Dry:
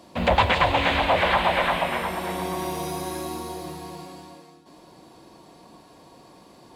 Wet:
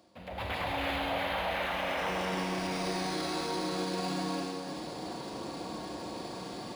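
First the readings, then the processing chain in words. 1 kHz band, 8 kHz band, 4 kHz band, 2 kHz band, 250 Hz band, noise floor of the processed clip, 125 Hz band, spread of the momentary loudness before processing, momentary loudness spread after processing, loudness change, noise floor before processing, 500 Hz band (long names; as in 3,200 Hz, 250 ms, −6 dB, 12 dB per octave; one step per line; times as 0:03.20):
−10.5 dB, −3.5 dB, −7.0 dB, −9.5 dB, −3.0 dB, −42 dBFS, −8.5 dB, 17 LU, 8 LU, −11.0 dB, −51 dBFS, −8.0 dB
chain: reversed playback
downward compressor 8 to 1, threshold −35 dBFS, peak gain reduction 20.5 dB
reversed playback
high-pass filter 45 Hz
parametric band 4,900 Hz +4 dB 0.27 octaves
notch filter 1,000 Hz, Q 11
hum removal 77.58 Hz, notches 3
on a send: echo with a time of its own for lows and highs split 360 Hz, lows 167 ms, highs 305 ms, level −10 dB
on the sum: automatic gain control gain up to 14.5 dB
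brickwall limiter −19 dBFS, peak gain reduction 7 dB
high-shelf EQ 12,000 Hz +12 dB
four-comb reverb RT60 1.5 s, combs from 32 ms, DRR 1 dB
linearly interpolated sample-rate reduction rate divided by 3×
level −7.5 dB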